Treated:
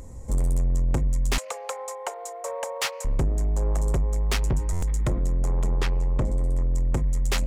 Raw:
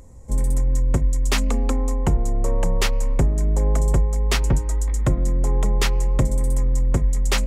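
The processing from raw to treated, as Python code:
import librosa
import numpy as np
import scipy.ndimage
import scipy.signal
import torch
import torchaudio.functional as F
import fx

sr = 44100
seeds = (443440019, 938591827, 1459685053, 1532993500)

y = fx.lowpass(x, sr, hz=2400.0, slope=6, at=(5.77, 6.74))
y = fx.rider(y, sr, range_db=10, speed_s=2.0)
y = fx.steep_highpass(y, sr, hz=500.0, slope=48, at=(1.38, 3.05))
y = 10.0 ** (-19.0 / 20.0) * np.tanh(y / 10.0 ** (-19.0 / 20.0))
y = fx.buffer_glitch(y, sr, at_s=(4.72,), block=512, repeats=8)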